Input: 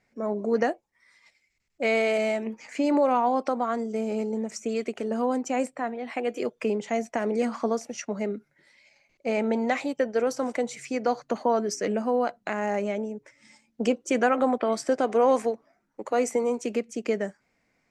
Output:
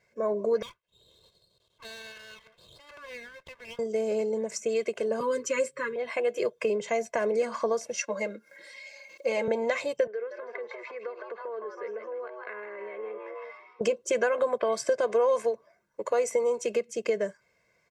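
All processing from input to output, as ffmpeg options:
-filter_complex "[0:a]asettb=1/sr,asplit=3[a][b][c];[a]atrim=end=0.624[d];[b]atrim=start=0.62:end=3.79,asetpts=PTS-STARTPTS,afade=t=in:d=0.004:c=qsin,afade=t=out:st=3.166:d=0.004:c=qsin,bandpass=f=1.6k:t=q:w=6.4,acompressor=mode=upward:threshold=-46dB:ratio=2.5:attack=3.2:release=140:knee=2.83:detection=peak,aeval=exprs='abs(val(0))':c=same[e];[c]atrim=start=3.786[f];[d][e]acrossfade=d=0.004:c1=hsin:c2=qsin[g];[g][f]acrossfade=d=0.004:c1=qsin:c2=hsin,asettb=1/sr,asplit=3[h][i][j];[h]atrim=end=5.204[k];[i]atrim=start=5.2:end=5.96,asetpts=PTS-STARTPTS,afade=t=in:d=0.004:c=qsin,afade=t=out:st=0.756:d=0.004:c=qsin,asuperstop=centerf=750:order=8:qfactor=1.5,aecho=1:1:7.2:0.86,atrim=end_sample=33516[l];[j]atrim=start=5.956[m];[k][l]acrossfade=d=0.004:c1=hsin:c2=qsin[n];[n][m]acrossfade=d=0.004:c1=qsin:c2=hsin,asettb=1/sr,asplit=3[o][p][q];[o]atrim=end=7.944[r];[p]atrim=start=7.94:end=9.48,asetpts=PTS-STARTPTS,afade=t=in:d=0.004:c=qsin,afade=t=out:st=1.536:d=0.004:c=qsin,highpass=280,aecho=1:1:3.7:0.82,atrim=end_sample=67914,acompressor=mode=upward:threshold=-40dB:ratio=2.5:attack=3.2:release=140:knee=2.83:detection=peak[s];[q]atrim=start=9.476[t];[r][s]acrossfade=d=0.004:c1=hsin:c2=qsin[u];[u][t]acrossfade=d=0.004:c1=qsin:c2=hsin,asettb=1/sr,asplit=3[v][w][x];[v]atrim=end=10.074[y];[w]atrim=start=10.07:end=13.81,asetpts=PTS-STARTPTS,afade=t=in:d=0.004:c=qsin,afade=t=out:st=3.736:d=0.004:c=qsin,asplit=6[z][aa][ab][ac][ad][ae];[aa]adelay=159,afreqshift=130,volume=-7dB[af];[ab]adelay=318,afreqshift=260,volume=-14.5dB[ag];[ac]adelay=477,afreqshift=390,volume=-22.1dB[ah];[ad]adelay=636,afreqshift=520,volume=-29.6dB[ai];[ae]adelay=795,afreqshift=650,volume=-37.1dB[aj];[z][af][ag][ah][ai][aj]amix=inputs=6:normalize=0,atrim=end_sample=164934,acompressor=threshold=-38dB:ratio=8:attack=3.2:release=140:knee=1:detection=peak,highpass=380,equalizer=f=440:t=q:w=4:g=9,equalizer=f=620:t=q:w=4:g=-6,equalizer=f=890:t=q:w=4:g=-3,equalizer=f=1.3k:t=q:w=4:g=6,equalizer=f=1.9k:t=q:w=4:g=7,equalizer=f=3k:t=q:w=4:g=-5,lowpass=f=3.3k:w=0.5412,lowpass=f=3.3k:w=1.3066[ak];[x]atrim=start=13.806[al];[y][ak]acrossfade=d=0.004:c1=hsin:c2=qsin[am];[am][al]acrossfade=d=0.004:c1=qsin:c2=hsin,highpass=f=110:p=1,aecho=1:1:1.9:0.86,acompressor=threshold=-24dB:ratio=2.5"

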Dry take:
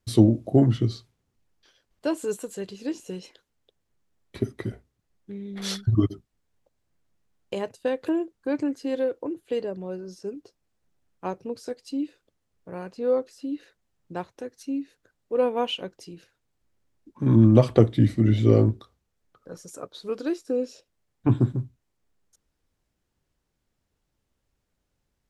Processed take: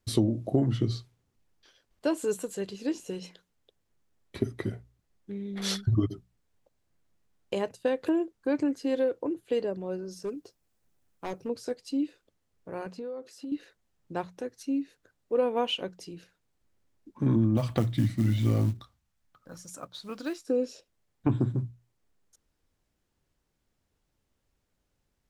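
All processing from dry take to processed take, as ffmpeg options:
-filter_complex "[0:a]asettb=1/sr,asplit=3[a][b][c];[a]atrim=end=10.114[d];[b]atrim=start=10.11:end=11.49,asetpts=PTS-STARTPTS,afade=t=in:d=0.004:c=qsin,afade=t=out:st=1.376:d=0.004:c=qsin,highshelf=f=8.5k:g=9,asoftclip=type=hard:threshold=-28.5dB[e];[c]atrim=start=11.486[f];[d][e]acrossfade=d=0.004:c1=hsin:c2=qsin[g];[g][f]acrossfade=d=0.004:c1=qsin:c2=hsin,asettb=1/sr,asplit=3[h][i][j];[h]atrim=end=12.864[k];[i]atrim=start=12.86:end=13.52,asetpts=PTS-STARTPTS,afade=t=in:d=0.004:c=qsin,afade=t=out:st=0.656:d=0.004:c=qsin,highpass=78,acompressor=threshold=-34dB:ratio=12:attack=3.2:release=140:knee=1:detection=peak[l];[j]atrim=start=13.516[m];[k][l]acrossfade=d=0.004:c1=hsin:c2=qsin[n];[n][m]acrossfade=d=0.004:c1=qsin:c2=hsin,asettb=1/sr,asplit=3[o][p][q];[o]atrim=end=17.574[r];[p]atrim=start=17.57:end=20.47,asetpts=PTS-STARTPTS,afade=t=in:d=0.004:c=qsin,afade=t=out:st=2.896:d=0.004:c=qsin,equalizer=f=420:t=o:w=0.73:g=-14,acrusher=bits=7:mode=log:mix=0:aa=0.000001[s];[q]atrim=start=20.466[t];[r][s]acrossfade=d=0.004:c1=hsin:c2=qsin[u];[u][t]acrossfade=d=0.004:c1=qsin:c2=hsin,bandreject=f=60:t=h:w=6,bandreject=f=120:t=h:w=6,bandreject=f=180:t=h:w=6,acompressor=threshold=-21dB:ratio=5"

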